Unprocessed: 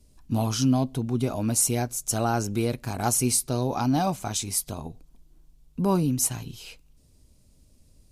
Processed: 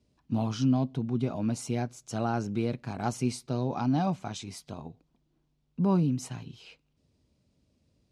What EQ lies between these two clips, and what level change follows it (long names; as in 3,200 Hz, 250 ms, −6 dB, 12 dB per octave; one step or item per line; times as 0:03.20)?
dynamic equaliser 170 Hz, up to +6 dB, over −37 dBFS, Q 1.3
band-pass filter 100–4,000 Hz
−5.5 dB